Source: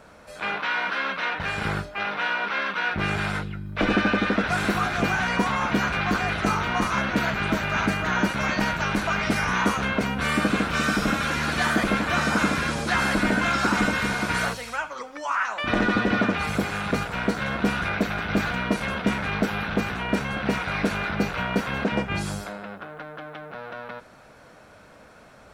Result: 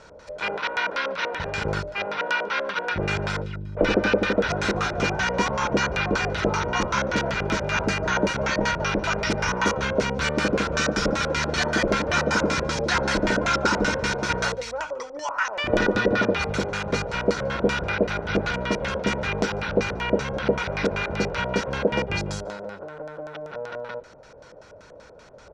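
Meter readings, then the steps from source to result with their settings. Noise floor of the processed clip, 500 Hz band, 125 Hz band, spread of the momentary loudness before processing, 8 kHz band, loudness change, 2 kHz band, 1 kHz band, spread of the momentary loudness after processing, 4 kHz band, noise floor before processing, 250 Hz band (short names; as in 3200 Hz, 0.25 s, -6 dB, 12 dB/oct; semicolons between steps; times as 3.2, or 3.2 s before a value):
-47 dBFS, +5.5 dB, 0.0 dB, 9 LU, +3.0 dB, 0.0 dB, -1.0 dB, -1.0 dB, 9 LU, +1.5 dB, -50 dBFS, -2.0 dB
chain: comb 2.1 ms, depth 40%; LFO low-pass square 5.2 Hz 580–5900 Hz; outdoor echo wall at 25 m, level -25 dB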